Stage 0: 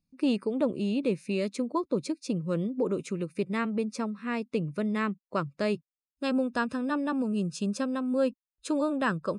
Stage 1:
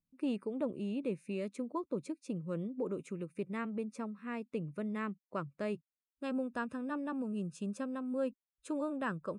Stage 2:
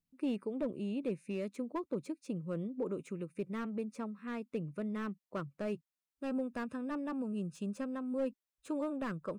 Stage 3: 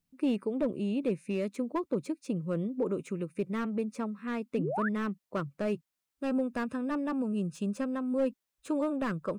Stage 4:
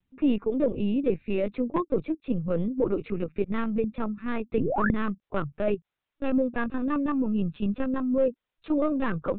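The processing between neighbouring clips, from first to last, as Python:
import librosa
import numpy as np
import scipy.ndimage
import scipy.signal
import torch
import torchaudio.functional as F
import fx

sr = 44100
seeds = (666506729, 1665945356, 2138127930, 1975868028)

y1 = fx.peak_eq(x, sr, hz=4700.0, db=-10.5, octaves=0.89)
y1 = y1 * 10.0 ** (-8.5 / 20.0)
y2 = fx.slew_limit(y1, sr, full_power_hz=17.0)
y3 = fx.spec_paint(y2, sr, seeds[0], shape='rise', start_s=4.57, length_s=0.32, low_hz=210.0, high_hz=1900.0, level_db=-39.0)
y3 = y3 * 10.0 ** (6.0 / 20.0)
y4 = fx.lpc_vocoder(y3, sr, seeds[1], excitation='pitch_kept', order=16)
y4 = y4 * 10.0 ** (5.5 / 20.0)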